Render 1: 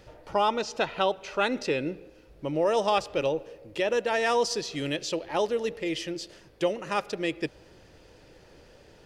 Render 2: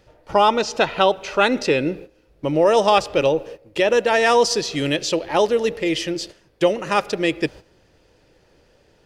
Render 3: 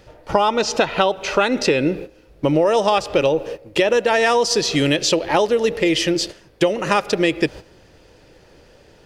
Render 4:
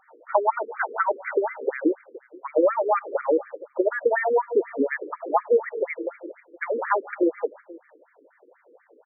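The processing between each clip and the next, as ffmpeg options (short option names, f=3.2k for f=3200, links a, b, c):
-af "agate=range=-12dB:threshold=-44dB:ratio=16:detection=peak,volume=9dB"
-af "acompressor=threshold=-21dB:ratio=6,volume=7.5dB"
-af "aecho=1:1:466:0.0794,afftfilt=real='re*between(b*sr/1024,350*pow(1700/350,0.5+0.5*sin(2*PI*4.1*pts/sr))/1.41,350*pow(1700/350,0.5+0.5*sin(2*PI*4.1*pts/sr))*1.41)':imag='im*between(b*sr/1024,350*pow(1700/350,0.5+0.5*sin(2*PI*4.1*pts/sr))/1.41,350*pow(1700/350,0.5+0.5*sin(2*PI*4.1*pts/sr))*1.41)':win_size=1024:overlap=0.75"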